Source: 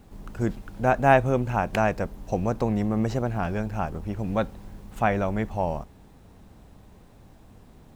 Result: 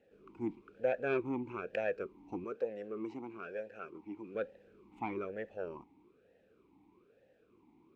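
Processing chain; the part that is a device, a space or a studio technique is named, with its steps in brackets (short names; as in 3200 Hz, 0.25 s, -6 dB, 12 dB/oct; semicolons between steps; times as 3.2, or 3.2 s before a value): 2.44–4.35 HPF 290 Hz 6 dB/oct; talk box (tube stage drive 10 dB, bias 0.6; vowel sweep e-u 1.1 Hz); gain +3 dB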